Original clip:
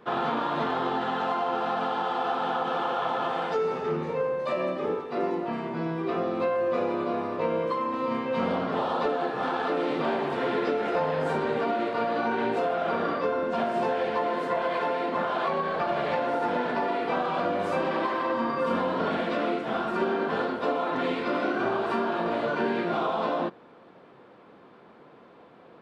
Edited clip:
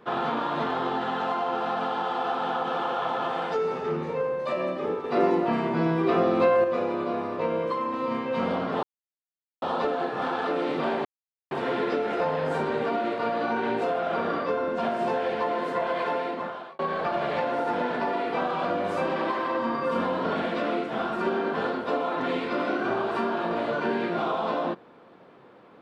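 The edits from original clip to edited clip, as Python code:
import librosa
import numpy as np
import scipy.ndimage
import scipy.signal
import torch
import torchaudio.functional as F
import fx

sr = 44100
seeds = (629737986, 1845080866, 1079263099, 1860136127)

y = fx.edit(x, sr, fx.clip_gain(start_s=5.04, length_s=1.6, db=6.0),
    fx.insert_silence(at_s=8.83, length_s=0.79),
    fx.insert_silence(at_s=10.26, length_s=0.46),
    fx.fade_out_span(start_s=14.92, length_s=0.62), tone=tone)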